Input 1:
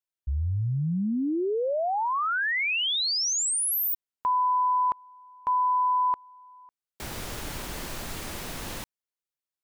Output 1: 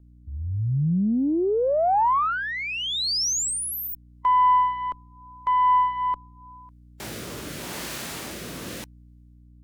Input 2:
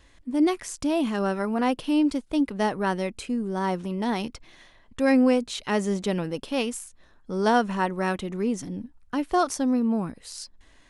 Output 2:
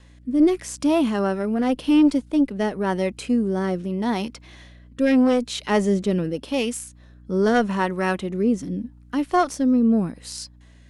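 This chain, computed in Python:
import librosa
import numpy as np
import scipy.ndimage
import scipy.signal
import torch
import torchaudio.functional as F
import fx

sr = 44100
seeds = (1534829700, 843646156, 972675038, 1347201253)

y = scipy.signal.sosfilt(scipy.signal.butter(2, 140.0, 'highpass', fs=sr, output='sos'), x)
y = fx.cheby_harmonics(y, sr, harmonics=(2, 4, 5), levels_db=(-8, -28, -23), full_scale_db=-9.5)
y = fx.add_hum(y, sr, base_hz=60, snr_db=26)
y = fx.hpss(y, sr, part='percussive', gain_db=-5)
y = fx.rotary(y, sr, hz=0.85)
y = y * librosa.db_to_amplitude(5.0)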